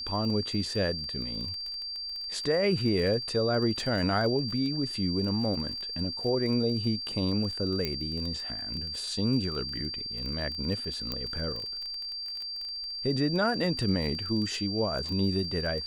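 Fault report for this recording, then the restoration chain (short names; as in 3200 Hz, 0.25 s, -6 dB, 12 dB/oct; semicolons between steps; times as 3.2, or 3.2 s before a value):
crackle 21/s -34 dBFS
tone 4700 Hz -34 dBFS
7.85 pop -16 dBFS
11.12 pop -17 dBFS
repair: de-click; notch 4700 Hz, Q 30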